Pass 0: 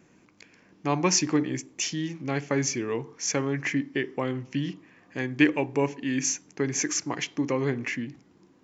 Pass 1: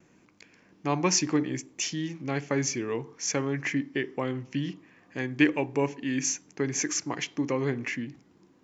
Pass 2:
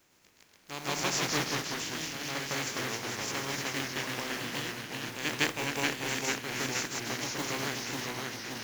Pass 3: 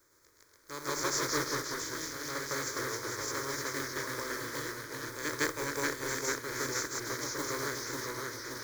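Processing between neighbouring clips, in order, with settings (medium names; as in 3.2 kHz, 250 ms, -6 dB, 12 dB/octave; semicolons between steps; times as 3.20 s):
gate with hold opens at -51 dBFS; trim -1.5 dB
spectral contrast reduction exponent 0.33; reverse echo 158 ms -5 dB; ever faster or slower copies 107 ms, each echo -1 st, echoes 3; trim -8 dB
static phaser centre 750 Hz, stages 6; trim +2 dB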